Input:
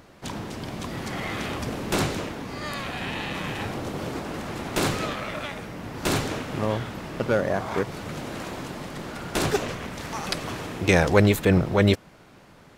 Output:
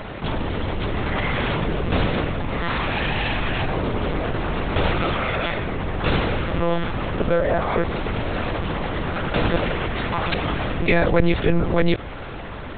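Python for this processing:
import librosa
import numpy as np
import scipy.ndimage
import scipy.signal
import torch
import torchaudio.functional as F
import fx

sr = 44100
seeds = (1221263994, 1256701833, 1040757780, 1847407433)

y = fx.lpc_monotone(x, sr, seeds[0], pitch_hz=170.0, order=10)
y = fx.env_flatten(y, sr, amount_pct=50)
y = y * 10.0 ** (-1.0 / 20.0)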